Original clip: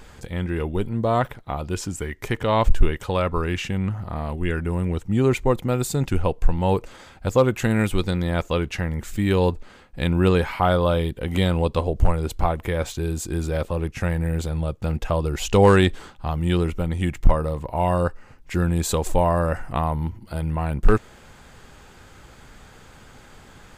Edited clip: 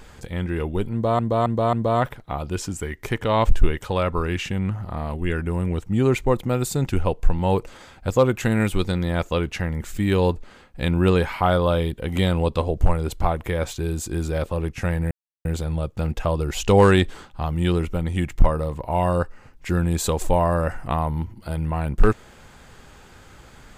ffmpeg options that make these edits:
-filter_complex "[0:a]asplit=5[s0][s1][s2][s3][s4];[s0]atrim=end=1.192[s5];[s1]atrim=start=0.918:end=1.192[s6];[s2]atrim=start=0.918:end=1.192[s7];[s3]atrim=start=0.918:end=14.3,asetpts=PTS-STARTPTS,afade=t=out:st=13.378:d=0.004:c=hsin,apad=pad_dur=0.34[s8];[s4]atrim=start=14.3,asetpts=PTS-STARTPTS,afade=t=in:d=0.004:c=hsin[s9];[s5][s6]acrossfade=d=0.004:c1=hsin:c2=hsin[s10];[s10][s7]acrossfade=d=0.004:c1=hsin:c2=hsin[s11];[s8][s9]concat=n=2:v=0:a=1[s12];[s11][s12]acrossfade=d=0.004:c1=hsin:c2=hsin"

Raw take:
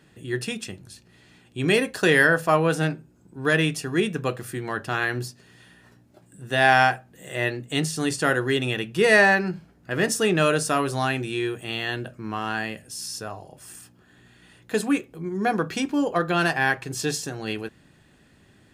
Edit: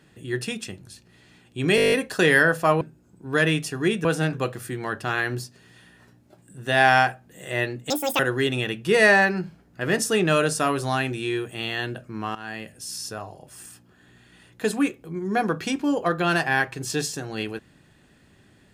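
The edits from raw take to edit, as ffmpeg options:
-filter_complex "[0:a]asplit=15[s0][s1][s2][s3][s4][s5][s6][s7][s8][s9][s10][s11][s12][s13][s14];[s0]atrim=end=1.782[s15];[s1]atrim=start=1.758:end=1.782[s16];[s2]atrim=start=1.758:end=1.782[s17];[s3]atrim=start=1.758:end=1.782[s18];[s4]atrim=start=1.758:end=1.782[s19];[s5]atrim=start=1.758:end=1.782[s20];[s6]atrim=start=1.758:end=1.782[s21];[s7]atrim=start=1.758:end=1.782[s22];[s8]atrim=start=1.758:end=2.652[s23];[s9]atrim=start=2.928:end=4.172[s24];[s10]atrim=start=2.648:end=2.932[s25];[s11]atrim=start=4.168:end=7.744[s26];[s12]atrim=start=7.74:end=8.29,asetpts=PTS-STARTPTS,asetrate=82908,aresample=44100[s27];[s13]atrim=start=8.286:end=12.45,asetpts=PTS-STARTPTS,afade=t=out:st=4.16:d=0.004:c=hsin:silence=0.16788[s28];[s14]atrim=start=12.45,asetpts=PTS-STARTPTS,afade=t=in:d=0.59:c=qsin:silence=0.16788[s29];[s15][s16]acrossfade=d=0.004:c1=hsin:c2=hsin[s30];[s30][s17]acrossfade=d=0.004:c1=hsin:c2=hsin[s31];[s31][s18]acrossfade=d=0.004:c1=hsin:c2=hsin[s32];[s32][s19]acrossfade=d=0.004:c1=hsin:c2=hsin[s33];[s33][s20]acrossfade=d=0.004:c1=hsin:c2=hsin[s34];[s34][s21]acrossfade=d=0.004:c1=hsin:c2=hsin[s35];[s35][s22]acrossfade=d=0.004:c1=hsin:c2=hsin[s36];[s36][s23]acrossfade=d=0.004:c1=hsin:c2=hsin[s37];[s37][s24]acrossfade=d=0.004:c1=hsin:c2=hsin[s38];[s38][s25]acrossfade=d=0.004:c1=hsin:c2=hsin[s39];[s39][s26]acrossfade=d=0.004:c1=hsin:c2=hsin[s40];[s40][s27]acrossfade=d=0.004:c1=hsin:c2=hsin[s41];[s28][s29]concat=n=2:v=0:a=1[s42];[s41][s42]acrossfade=d=0.004:c1=hsin:c2=hsin"

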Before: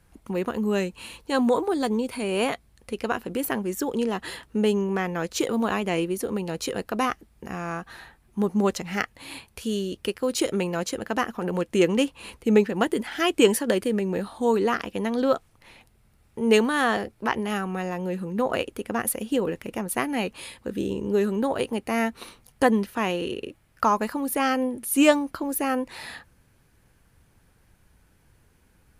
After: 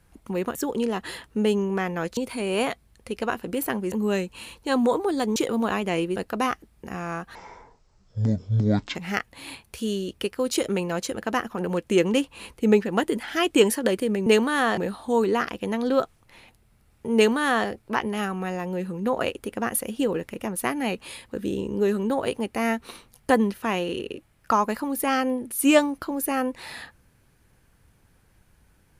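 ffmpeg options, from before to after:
-filter_complex "[0:a]asplit=10[s0][s1][s2][s3][s4][s5][s6][s7][s8][s9];[s0]atrim=end=0.552[s10];[s1]atrim=start=3.738:end=5.362[s11];[s2]atrim=start=1.988:end=3.742[s12];[s3]atrim=start=0.548:end=1.992[s13];[s4]atrim=start=5.358:end=6.162[s14];[s5]atrim=start=6.748:end=7.944[s15];[s6]atrim=start=7.94:end=8.79,asetpts=PTS-STARTPTS,asetrate=23373,aresample=44100,atrim=end_sample=70726,asetpts=PTS-STARTPTS[s16];[s7]atrim=start=8.786:end=14.102[s17];[s8]atrim=start=16.478:end=16.992[s18];[s9]atrim=start=14.098[s19];[s10][s11]acrossfade=d=0.004:c1=hsin:c2=hsin[s20];[s20][s12]acrossfade=d=0.004:c1=hsin:c2=hsin[s21];[s21][s13]acrossfade=d=0.004:c1=hsin:c2=hsin[s22];[s22][s14]acrossfade=d=0.004:c1=hsin:c2=hsin[s23];[s23][s15]acrossfade=d=0.004:c1=hsin:c2=hsin[s24];[s24][s16]acrossfade=d=0.004:c1=hsin:c2=hsin[s25];[s25][s17]acrossfade=d=0.004:c1=hsin:c2=hsin[s26];[s26][s18]acrossfade=d=0.004:c1=hsin:c2=hsin[s27];[s27][s19]acrossfade=d=0.004:c1=hsin:c2=hsin"

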